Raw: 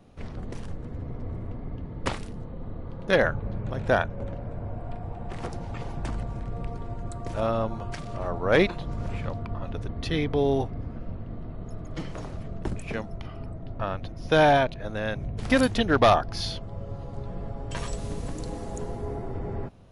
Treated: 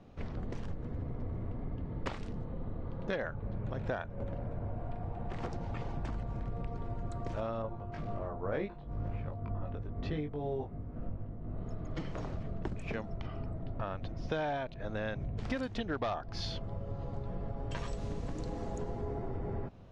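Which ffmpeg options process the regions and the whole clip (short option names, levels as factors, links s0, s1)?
-filter_complex "[0:a]asettb=1/sr,asplit=3[s0][s1][s2];[s0]atrim=end=7.624[s3];[s1]atrim=start=7.62:end=11.58,asetpts=PTS-STARTPTS,afade=t=in:d=0.004:c=qsin,afade=t=out:st=3.956:d=0.004:c=qsin,lowpass=f=1400:p=1,asplit=2[s4][s5];[s5]adelay=20,volume=0.708[s6];[s4][s6]amix=inputs=2:normalize=0,atrim=end_sample=174636,tremolo=f=2:d=0.63[s7];[s2]atrim=start=11.576[s8];[s3][s7]acrossfade=d=0.004:c1=hsin:c2=qsin[s9];[s9][s8]acrossfade=d=0.004:c1=qsin:c2=hsin,lowpass=f=7600:w=0.5412,lowpass=f=7600:w=1.3066,highshelf=f=4500:g=-7.5,acompressor=threshold=0.0251:ratio=6,volume=0.891"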